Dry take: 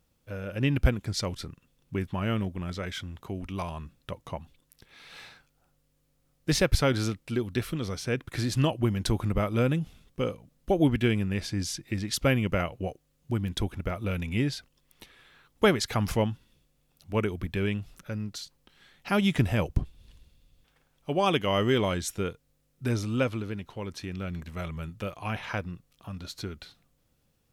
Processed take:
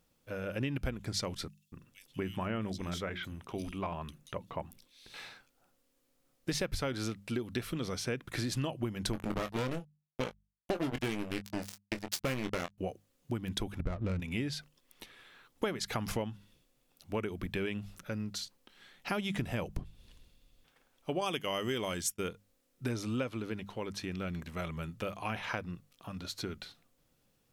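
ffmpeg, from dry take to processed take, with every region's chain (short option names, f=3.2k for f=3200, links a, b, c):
-filter_complex "[0:a]asettb=1/sr,asplit=3[a][b][c];[a]atrim=end=1.484[d];[b]atrim=start=1.48:end=5.14,asetpts=PTS-STARTPTS,afade=t=in:d=0.004:c=qsin,afade=t=out:st=3.656:d=0.004:c=qsin,bandreject=f=60:t=h:w=6,bandreject=f=120:t=h:w=6,bandreject=f=180:t=h:w=6,bandreject=f=240:t=h:w=6,bandreject=f=300:t=h:w=6,bandreject=f=360:t=h:w=6,acrossover=split=3300[e][f];[e]adelay=240[g];[g][f]amix=inputs=2:normalize=0,atrim=end_sample=161406[h];[c]atrim=start=5.136[i];[d][h]acrossfade=d=0.004:c1=hsin:c2=qsin[j];[j][i]acrossfade=d=0.004:c1=qsin:c2=hsin,asettb=1/sr,asplit=3[k][l][m];[k]atrim=end=9.134[n];[l]atrim=start=9.13:end=12.78,asetpts=PTS-STARTPTS,afade=t=in:d=0.004:c=qsin,afade=t=out:st=3.646:d=0.004:c=qsin,acrusher=bits=3:mix=0:aa=0.5,asplit=2[o][p];[p]adelay=23,volume=-10dB[q];[o][q]amix=inputs=2:normalize=0,atrim=end_sample=160965[r];[m]atrim=start=12.776[s];[n][r]acrossfade=d=0.004:c1=hsin:c2=qsin[t];[t][s]acrossfade=d=0.004:c1=qsin:c2=hsin,asettb=1/sr,asplit=3[u][v][w];[u]atrim=end=13.804[x];[v]atrim=start=13.8:end=14.2,asetpts=PTS-STARTPTS,afade=t=in:d=0.004:c=qsin,afade=t=out:st=0.396:d=0.004:c=qsin,aemphasis=mode=reproduction:type=bsi,adynamicsmooth=sensitivity=6.5:basefreq=550[y];[w]atrim=start=14.196[z];[x][y]acrossfade=d=0.004:c1=hsin:c2=qsin[aa];[aa][z]acrossfade=d=0.004:c1=qsin:c2=hsin,asettb=1/sr,asplit=3[ab][ac][ad];[ab]atrim=end=21.214[ae];[ac]atrim=start=21.21:end=22.29,asetpts=PTS-STARTPTS,afade=t=in:d=0.004:c=qsin,afade=t=out:st=1.076:d=0.004:c=qsin,bandreject=f=3.9k:w=6.4,agate=range=-33dB:threshold=-32dB:ratio=3:release=100:detection=peak,highshelf=f=4k:g=12[af];[ad]atrim=start=22.286[ag];[ae][af]acrossfade=d=0.004:c1=hsin:c2=qsin[ah];[ah][ag]acrossfade=d=0.004:c1=qsin:c2=hsin,equalizer=f=64:w=0.85:g=-7.5,bandreject=f=50:t=h:w=6,bandreject=f=100:t=h:w=6,bandreject=f=150:t=h:w=6,bandreject=f=200:t=h:w=6,acompressor=threshold=-31dB:ratio=6"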